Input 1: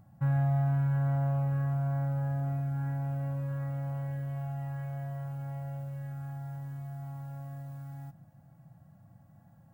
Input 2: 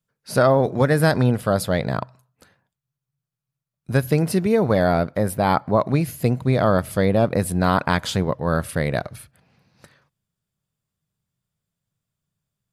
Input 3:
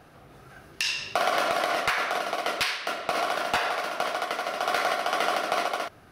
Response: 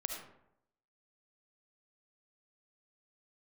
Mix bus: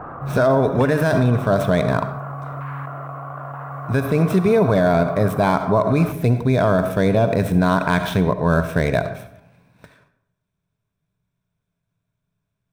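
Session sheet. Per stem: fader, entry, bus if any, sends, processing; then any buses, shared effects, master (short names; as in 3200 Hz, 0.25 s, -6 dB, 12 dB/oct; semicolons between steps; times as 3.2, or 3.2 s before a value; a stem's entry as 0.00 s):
+1.5 dB, 0.00 s, no send, random-step tremolo, depth 55%
+0.5 dB, 0.00 s, send -4 dB, median filter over 9 samples; ripple EQ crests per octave 1.6, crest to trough 7 dB
-6.5 dB, 0.00 s, no send, ladder low-pass 1300 Hz, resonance 60%; fast leveller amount 100%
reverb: on, RT60 0.75 s, pre-delay 30 ms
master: limiter -7.5 dBFS, peak gain reduction 8.5 dB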